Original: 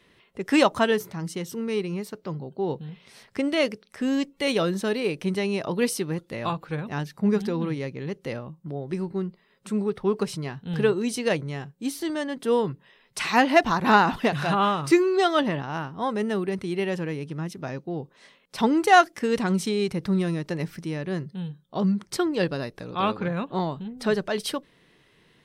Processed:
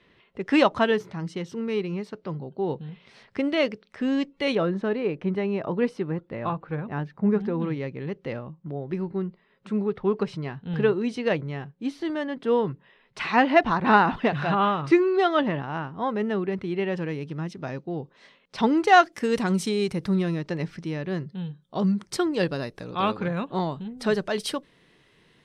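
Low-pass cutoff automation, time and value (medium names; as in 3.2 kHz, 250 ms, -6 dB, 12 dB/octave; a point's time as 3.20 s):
3.9 kHz
from 4.55 s 1.8 kHz
from 7.60 s 3 kHz
from 16.97 s 5.1 kHz
from 19.12 s 12 kHz
from 20.15 s 5.2 kHz
from 21.62 s 11 kHz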